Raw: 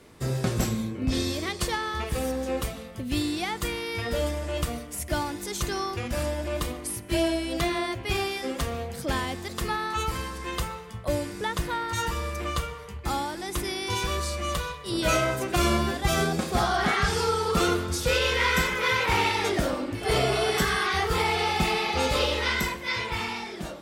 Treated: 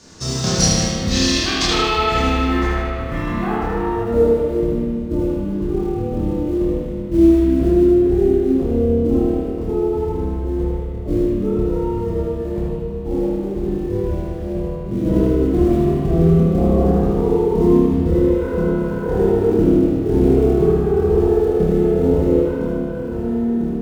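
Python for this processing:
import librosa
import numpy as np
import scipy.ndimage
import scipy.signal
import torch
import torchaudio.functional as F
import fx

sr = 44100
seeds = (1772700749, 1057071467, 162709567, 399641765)

p1 = fx.hum_notches(x, sr, base_hz=60, count=9)
p2 = fx.formant_shift(p1, sr, semitones=-5)
p3 = fx.high_shelf_res(p2, sr, hz=3900.0, db=8.0, q=1.5)
p4 = fx.filter_sweep_lowpass(p3, sr, from_hz=5800.0, to_hz=360.0, start_s=1.2, end_s=4.68, q=1.8)
p5 = fx.quant_float(p4, sr, bits=2)
p6 = p4 + F.gain(torch.from_numpy(p5), -9.0).numpy()
p7 = fx.doubler(p6, sr, ms=26.0, db=-2.5)
p8 = p7 + fx.echo_thinned(p7, sr, ms=77, feedback_pct=59, hz=430.0, wet_db=-4.5, dry=0)
y = fx.rev_spring(p8, sr, rt60_s=2.2, pass_ms=(30, 48), chirp_ms=65, drr_db=-4.5)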